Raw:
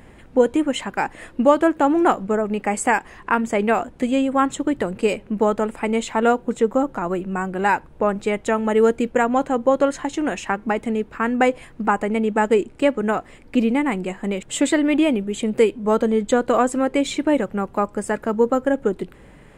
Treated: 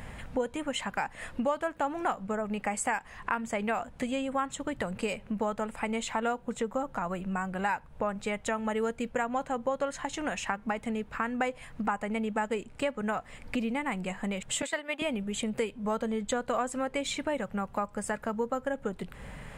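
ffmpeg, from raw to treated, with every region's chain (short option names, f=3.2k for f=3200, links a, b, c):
-filter_complex "[0:a]asettb=1/sr,asplit=3[a][b][c];[a]atrim=end=14.624[d];[b]atrim=start=14.62:end=15.02,asetpts=PTS-STARTPTS,afade=t=in:d=0.004:c=qsin,afade=t=out:st=0.396:d=0.004:c=qsin,highpass=460,agate=range=-9dB:threshold=-25dB:ratio=16:release=100:detection=peak[e];[c]atrim=start=15.016[f];[d][e]acrossfade=d=0.004:c1=hsin:c2=qsin[g];[g][f]acrossfade=d=0.004:c1=qsin:c2=hsin,equalizer=f=340:t=o:w=0.76:g=-13.5,acompressor=threshold=-39dB:ratio=2.5,volume=4.5dB"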